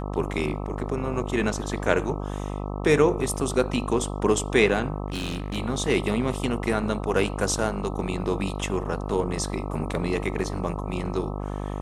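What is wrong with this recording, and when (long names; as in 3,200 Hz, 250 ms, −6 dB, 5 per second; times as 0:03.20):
mains buzz 50 Hz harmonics 26 −31 dBFS
0:05.08–0:05.57: clipping −25.5 dBFS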